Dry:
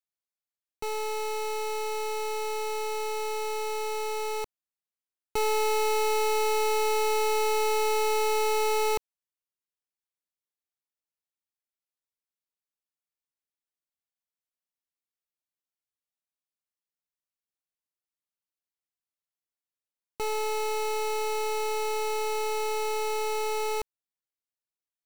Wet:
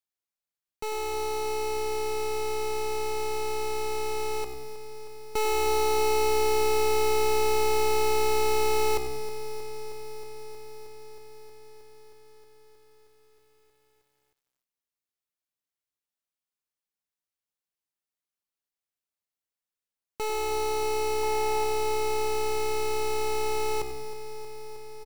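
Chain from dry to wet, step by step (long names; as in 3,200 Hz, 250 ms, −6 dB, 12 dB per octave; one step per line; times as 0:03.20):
0:21.23–0:21.64: hollow resonant body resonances 960/1,900 Hz, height 12 dB, ringing for 25 ms
echo with shifted repeats 95 ms, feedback 34%, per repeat −65 Hz, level −13 dB
feedback echo at a low word length 315 ms, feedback 80%, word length 10 bits, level −12.5 dB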